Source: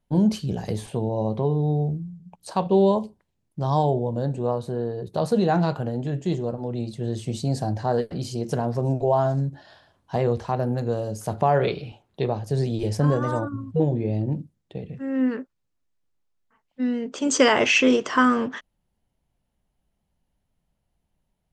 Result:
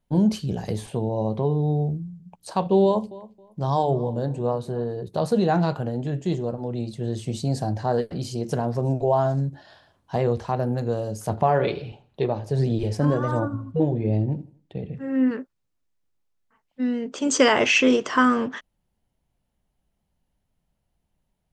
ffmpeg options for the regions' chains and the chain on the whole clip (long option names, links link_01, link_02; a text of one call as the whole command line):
ffmpeg -i in.wav -filter_complex "[0:a]asettb=1/sr,asplit=3[link_01][link_02][link_03];[link_01]atrim=end=2.844[link_04];[link_02]atrim=start=2.84:end=4.97,asetpts=PTS-STARTPTS,afade=type=in:duration=0.004:curve=qsin,afade=type=out:start_time=2.126:duration=0.004:curve=qsin,bandreject=frequency=50:width_type=h:width=6,bandreject=frequency=100:width_type=h:width=6,bandreject=frequency=150:width_type=h:width=6,bandreject=frequency=200:width_type=h:width=6,bandreject=frequency=250:width_type=h:width=6,bandreject=frequency=300:width_type=h:width=6,bandreject=frequency=350:width_type=h:width=6,asplit=2[link_05][link_06];[link_06]adelay=271,lowpass=frequency=3100:poles=1,volume=-19dB,asplit=2[link_07][link_08];[link_08]adelay=271,lowpass=frequency=3100:poles=1,volume=0.23[link_09];[link_05][link_07][link_09]amix=inputs=3:normalize=0,atrim=end_sample=93933[link_10];[link_03]atrim=start=4.966[link_11];[link_04][link_10]acrossfade=duration=0.004:curve1=hsin:curve2=qsin[link_12];[link_12][link_11]acrossfade=duration=0.004:curve1=qsin:curve2=hsin,asettb=1/sr,asplit=3[link_13][link_14][link_15];[link_13]atrim=end=11.294[link_16];[link_14]atrim=start=11.29:end=15.31,asetpts=PTS-STARTPTS,afade=type=in:duration=0.004:curve=qsin,afade=type=out:start_time=4.016:duration=0.004:curve=qsin,aphaser=in_gain=1:out_gain=1:delay=3.5:decay=0.3:speed=1.4:type=sinusoidal,highshelf=frequency=5700:gain=-7.5,aecho=1:1:82|164|246:0.106|0.0466|0.0205,atrim=end_sample=177282[link_17];[link_15]atrim=start=15.306[link_18];[link_16][link_17]acrossfade=duration=0.004:curve1=hsin:curve2=qsin[link_19];[link_19][link_18]acrossfade=duration=0.004:curve1=qsin:curve2=hsin" out.wav